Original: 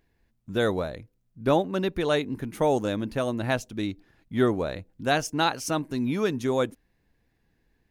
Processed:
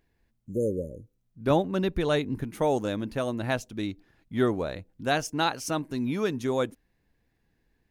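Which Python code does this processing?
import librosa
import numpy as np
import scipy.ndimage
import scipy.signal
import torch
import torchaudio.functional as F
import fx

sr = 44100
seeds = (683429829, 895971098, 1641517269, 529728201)

y = fx.spec_repair(x, sr, seeds[0], start_s=0.41, length_s=0.75, low_hz=600.0, high_hz=6200.0, source='both')
y = fx.low_shelf(y, sr, hz=140.0, db=10.0, at=(1.5, 2.44))
y = F.gain(torch.from_numpy(y), -2.0).numpy()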